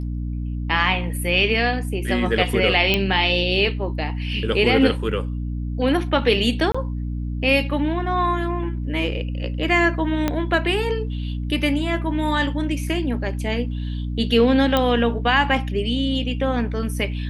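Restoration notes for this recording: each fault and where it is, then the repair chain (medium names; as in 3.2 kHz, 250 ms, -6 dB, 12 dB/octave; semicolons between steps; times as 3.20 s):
hum 60 Hz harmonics 5 -26 dBFS
2.94 s: pop -5 dBFS
6.72–6.75 s: dropout 25 ms
10.28 s: pop -7 dBFS
14.77 s: pop -6 dBFS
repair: de-click; de-hum 60 Hz, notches 5; interpolate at 6.72 s, 25 ms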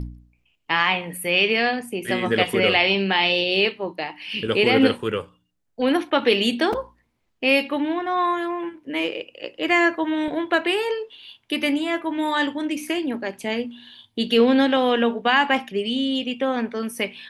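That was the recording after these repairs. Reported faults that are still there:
10.28 s: pop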